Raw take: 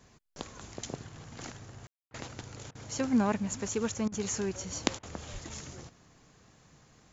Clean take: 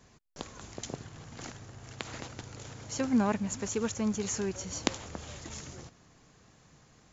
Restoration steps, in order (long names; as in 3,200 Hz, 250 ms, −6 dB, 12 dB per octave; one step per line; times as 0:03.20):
0:05.32–0:05.44: high-pass filter 140 Hz 24 dB per octave
ambience match 0:01.87–0:02.11
repair the gap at 0:02.10/0:02.71/0:04.08/0:04.99, 40 ms